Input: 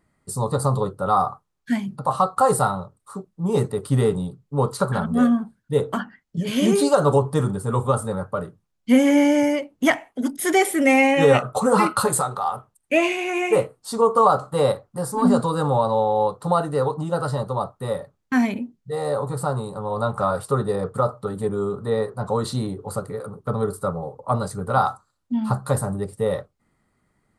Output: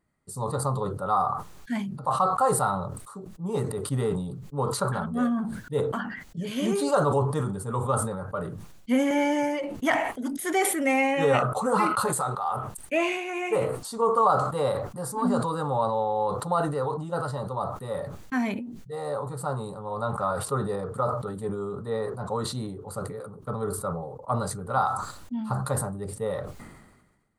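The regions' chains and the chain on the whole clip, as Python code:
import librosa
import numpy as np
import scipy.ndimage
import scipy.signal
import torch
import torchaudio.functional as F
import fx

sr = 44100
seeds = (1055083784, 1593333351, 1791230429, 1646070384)

y = fx.chain(x, sr, fx.high_shelf(hz=11000.0, db=-5.0),
    fx.comb(ms=5.7, depth=0.94), at=(9.1, 9.76))
y = fx.notch(y, sr, hz=5200.0, q=26.0)
y = fx.dynamic_eq(y, sr, hz=1100.0, q=0.87, threshold_db=-31.0, ratio=4.0, max_db=4)
y = fx.sustainer(y, sr, db_per_s=47.0)
y = y * 10.0 ** (-8.5 / 20.0)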